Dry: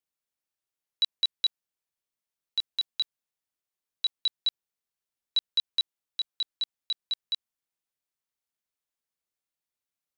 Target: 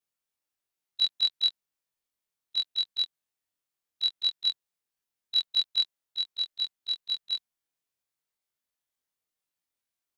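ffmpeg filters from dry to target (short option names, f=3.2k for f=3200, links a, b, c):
-af "afftfilt=real='re':imag='-im':win_size=2048:overlap=0.75,volume=5.5dB"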